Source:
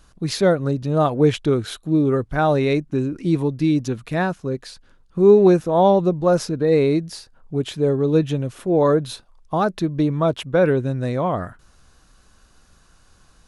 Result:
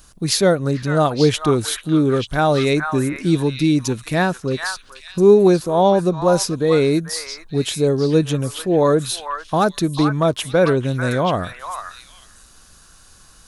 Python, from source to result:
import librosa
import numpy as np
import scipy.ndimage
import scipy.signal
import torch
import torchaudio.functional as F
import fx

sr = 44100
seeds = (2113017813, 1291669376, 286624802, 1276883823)

p1 = fx.high_shelf(x, sr, hz=3700.0, db=8.5)
p2 = fx.echo_stepped(p1, sr, ms=443, hz=1400.0, octaves=1.4, feedback_pct=70, wet_db=-2.0)
p3 = fx.rider(p2, sr, range_db=3, speed_s=0.5)
p4 = p2 + F.gain(torch.from_numpy(p3), -1.5).numpy()
p5 = fx.high_shelf(p4, sr, hz=9200.0, db=6.5)
y = F.gain(torch.from_numpy(p5), -4.0).numpy()